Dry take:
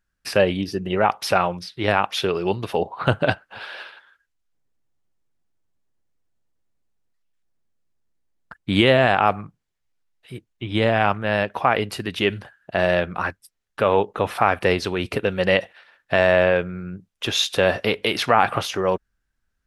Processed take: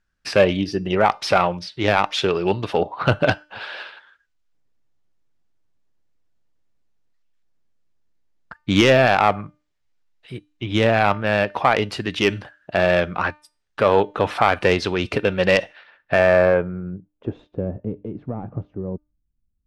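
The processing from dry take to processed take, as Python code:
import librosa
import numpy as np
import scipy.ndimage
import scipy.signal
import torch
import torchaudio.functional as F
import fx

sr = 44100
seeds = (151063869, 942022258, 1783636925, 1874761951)

p1 = fx.self_delay(x, sr, depth_ms=0.094)
p2 = fx.filter_sweep_lowpass(p1, sr, from_hz=6300.0, to_hz=220.0, start_s=15.52, end_s=17.74, q=0.81)
p3 = np.clip(10.0 ** (9.5 / 20.0) * p2, -1.0, 1.0) / 10.0 ** (9.5 / 20.0)
p4 = p2 + F.gain(torch.from_numpy(p3), -3.5).numpy()
p5 = fx.comb_fb(p4, sr, f0_hz=300.0, decay_s=0.36, harmonics='all', damping=0.0, mix_pct=40)
y = F.gain(torch.from_numpy(p5), 2.0).numpy()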